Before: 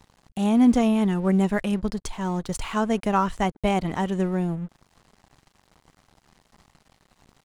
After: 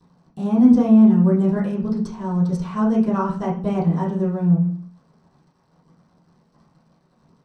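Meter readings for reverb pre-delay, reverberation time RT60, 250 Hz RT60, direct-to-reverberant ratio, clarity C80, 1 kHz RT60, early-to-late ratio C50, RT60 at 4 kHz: 3 ms, 0.45 s, 0.70 s, −11.0 dB, 11.5 dB, 0.45 s, 7.0 dB, 0.40 s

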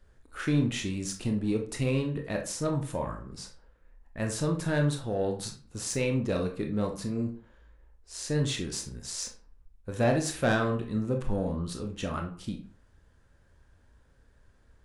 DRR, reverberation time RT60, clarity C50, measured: 3.0 dB, 0.45 s, 9.0 dB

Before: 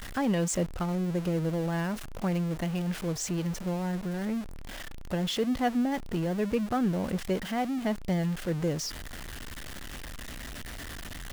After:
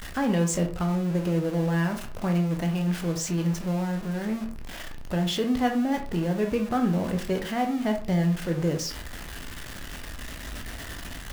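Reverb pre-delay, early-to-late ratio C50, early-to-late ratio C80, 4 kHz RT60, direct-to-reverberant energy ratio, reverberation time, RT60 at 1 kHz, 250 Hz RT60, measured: 12 ms, 10.0 dB, 15.0 dB, 0.25 s, 3.5 dB, 0.40 s, 0.45 s, 0.40 s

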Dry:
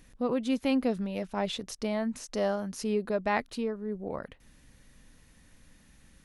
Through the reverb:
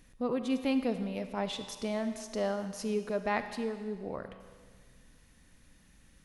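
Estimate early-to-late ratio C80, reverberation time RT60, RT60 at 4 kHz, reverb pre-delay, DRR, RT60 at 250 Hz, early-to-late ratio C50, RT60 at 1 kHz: 10.5 dB, 1.7 s, 1.7 s, 38 ms, 9.0 dB, 1.7 s, 9.5 dB, 1.7 s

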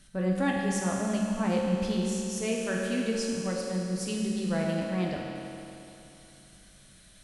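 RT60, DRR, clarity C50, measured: 2.9 s, −2.5 dB, 0.0 dB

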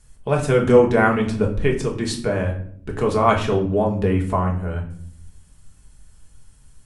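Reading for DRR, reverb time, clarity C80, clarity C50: 0.0 dB, non-exponential decay, 13.0 dB, 9.0 dB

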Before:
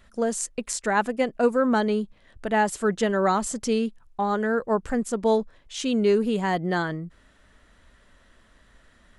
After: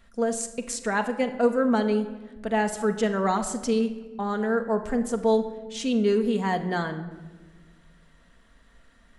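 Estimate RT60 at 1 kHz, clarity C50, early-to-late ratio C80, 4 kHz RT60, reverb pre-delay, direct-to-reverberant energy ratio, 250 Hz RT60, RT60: 1.1 s, 11.0 dB, 13.5 dB, 0.85 s, 4 ms, 5.5 dB, 2.0 s, 1.3 s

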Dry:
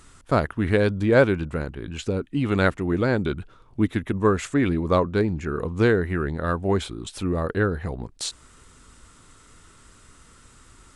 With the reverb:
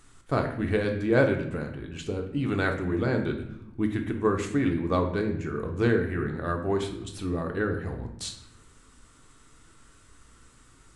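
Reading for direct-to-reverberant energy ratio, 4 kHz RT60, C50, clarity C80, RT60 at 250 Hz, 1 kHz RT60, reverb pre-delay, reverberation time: 3.0 dB, 0.60 s, 7.5 dB, 10.5 dB, 1.2 s, 0.70 s, 3 ms, 0.80 s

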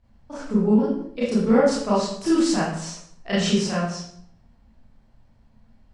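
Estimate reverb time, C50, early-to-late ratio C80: 0.70 s, 0.0 dB, 4.5 dB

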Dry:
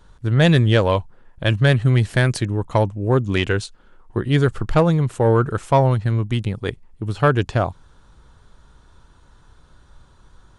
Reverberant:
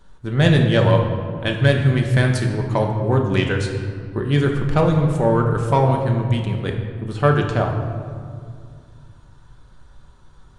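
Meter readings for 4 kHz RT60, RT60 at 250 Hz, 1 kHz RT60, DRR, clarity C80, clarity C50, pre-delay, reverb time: 1.2 s, 2.9 s, 2.0 s, 1.5 dB, 6.5 dB, 5.0 dB, 4 ms, 2.2 s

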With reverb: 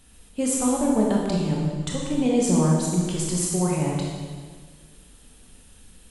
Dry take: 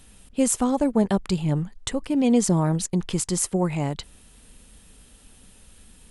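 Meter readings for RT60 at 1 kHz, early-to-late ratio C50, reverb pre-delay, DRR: 1.6 s, 0.0 dB, 21 ms, −2.5 dB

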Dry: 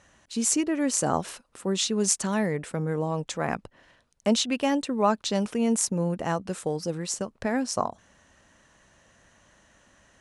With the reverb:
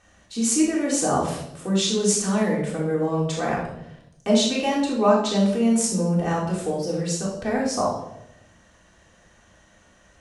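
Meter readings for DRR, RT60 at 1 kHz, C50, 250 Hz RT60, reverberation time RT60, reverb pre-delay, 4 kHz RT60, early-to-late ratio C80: −5.5 dB, 0.70 s, 3.5 dB, 1.1 s, 0.85 s, 3 ms, 0.65 s, 7.0 dB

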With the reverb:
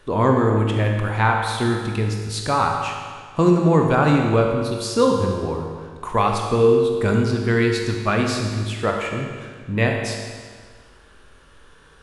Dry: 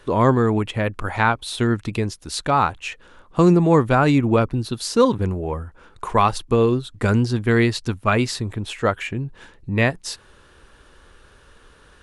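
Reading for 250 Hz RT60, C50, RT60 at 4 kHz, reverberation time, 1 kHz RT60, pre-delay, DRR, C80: 1.7 s, 2.5 dB, 1.6 s, 1.7 s, 1.7 s, 19 ms, 1.0 dB, 4.0 dB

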